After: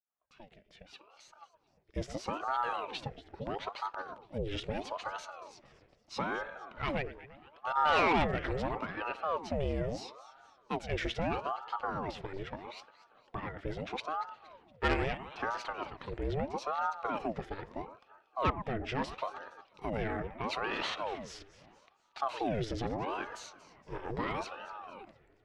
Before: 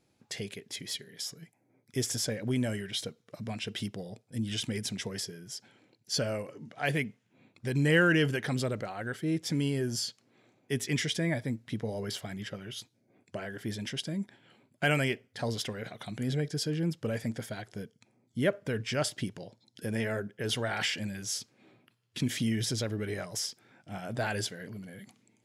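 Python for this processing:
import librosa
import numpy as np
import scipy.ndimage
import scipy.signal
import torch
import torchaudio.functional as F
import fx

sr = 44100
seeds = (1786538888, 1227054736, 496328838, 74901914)

p1 = fx.fade_in_head(x, sr, length_s=2.46)
p2 = scipy.signal.sosfilt(scipy.signal.butter(2, 2600.0, 'lowpass', fs=sr, output='sos'), p1)
p3 = fx.level_steps(p2, sr, step_db=13)
p4 = p2 + (p3 * 10.0 ** (1.0 / 20.0))
p5 = fx.echo_alternate(p4, sr, ms=117, hz=1300.0, feedback_pct=66, wet_db=-13)
p6 = fx.tube_stage(p5, sr, drive_db=17.0, bias=0.4)
p7 = fx.ring_lfo(p6, sr, carrier_hz=640.0, swing_pct=70, hz=0.77)
y = p7 * 10.0 ** (-1.5 / 20.0)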